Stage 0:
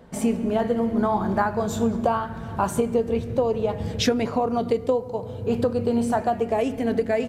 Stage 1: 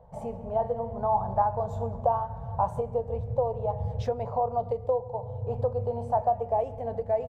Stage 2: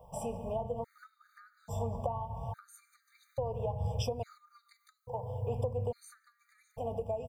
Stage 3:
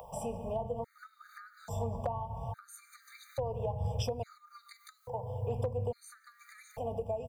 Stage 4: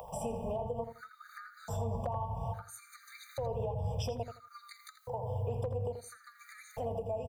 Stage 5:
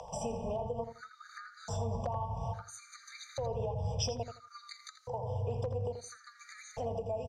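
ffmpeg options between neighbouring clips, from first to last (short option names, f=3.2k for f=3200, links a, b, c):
-af "firequalizer=gain_entry='entry(130,0);entry(190,-15);entry(310,-28);entry(490,-4);entry(850,1);entry(1400,-19);entry(2500,-23);entry(11000,-27)':delay=0.05:min_phase=1"
-filter_complex "[0:a]crystalizer=i=9:c=0,acrossover=split=330[a][b];[b]acompressor=threshold=-32dB:ratio=10[c];[a][c]amix=inputs=2:normalize=0,afftfilt=real='re*gt(sin(2*PI*0.59*pts/sr)*(1-2*mod(floor(b*sr/1024/1200),2)),0)':imag='im*gt(sin(2*PI*0.59*pts/sr)*(1-2*mod(floor(b*sr/1024/1200),2)),0)':win_size=1024:overlap=0.75,volume=-2.5dB"
-filter_complex "[0:a]acrossover=split=410[a][b];[b]acompressor=mode=upward:threshold=-42dB:ratio=2.5[c];[a][c]amix=inputs=2:normalize=0,asoftclip=type=hard:threshold=-24dB"
-filter_complex "[0:a]alimiter=level_in=5.5dB:limit=-24dB:level=0:latency=1:release=109,volume=-5.5dB,asplit=2[a][b];[b]adelay=83,lowpass=f=3.5k:p=1,volume=-8.5dB,asplit=2[c][d];[d]adelay=83,lowpass=f=3.5k:p=1,volume=0.2,asplit=2[e][f];[f]adelay=83,lowpass=f=3.5k:p=1,volume=0.2[g];[a][c][e][g]amix=inputs=4:normalize=0,volume=2dB"
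-af "lowpass=f=5.8k:t=q:w=3.6"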